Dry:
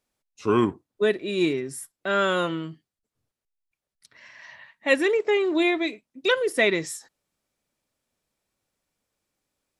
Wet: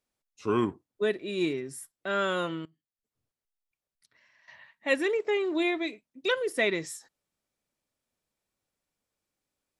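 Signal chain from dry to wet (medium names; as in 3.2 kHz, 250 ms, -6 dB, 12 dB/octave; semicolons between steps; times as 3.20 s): 2.65–4.48 s: compression 6:1, threshold -57 dBFS, peak gain reduction 21.5 dB; trim -5.5 dB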